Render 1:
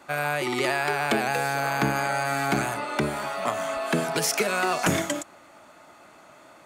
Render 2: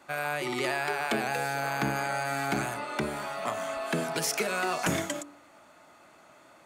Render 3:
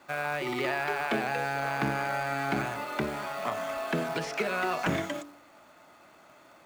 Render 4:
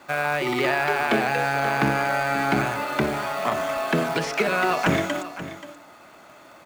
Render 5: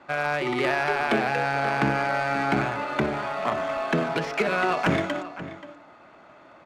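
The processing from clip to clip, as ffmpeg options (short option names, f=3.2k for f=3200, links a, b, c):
-af "bandreject=f=48.25:t=h:w=4,bandreject=f=96.5:t=h:w=4,bandreject=f=144.75:t=h:w=4,bandreject=f=193:t=h:w=4,bandreject=f=241.25:t=h:w=4,bandreject=f=289.5:t=h:w=4,bandreject=f=337.75:t=h:w=4,bandreject=f=386:t=h:w=4,bandreject=f=434.25:t=h:w=4,bandreject=f=482.5:t=h:w=4,bandreject=f=530.75:t=h:w=4,bandreject=f=579:t=h:w=4,bandreject=f=627.25:t=h:w=4,bandreject=f=675.5:t=h:w=4,bandreject=f=723.75:t=h:w=4,bandreject=f=772:t=h:w=4,bandreject=f=820.25:t=h:w=4,bandreject=f=868.5:t=h:w=4,bandreject=f=916.75:t=h:w=4,bandreject=f=965:t=h:w=4,bandreject=f=1.01325k:t=h:w=4,bandreject=f=1.0615k:t=h:w=4,bandreject=f=1.10975k:t=h:w=4,bandreject=f=1.158k:t=h:w=4,bandreject=f=1.20625k:t=h:w=4,bandreject=f=1.2545k:t=h:w=4,bandreject=f=1.30275k:t=h:w=4,bandreject=f=1.351k:t=h:w=4,bandreject=f=1.39925k:t=h:w=4,volume=-4.5dB"
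-filter_complex "[0:a]lowpass=6.6k,acrusher=bits=3:mode=log:mix=0:aa=0.000001,acrossover=split=3600[a][b];[b]acompressor=threshold=-46dB:ratio=4:attack=1:release=60[c];[a][c]amix=inputs=2:normalize=0"
-af "aecho=1:1:530:0.211,volume=7.5dB"
-af "adynamicsmooth=sensitivity=2:basefreq=3.2k,volume=-1.5dB"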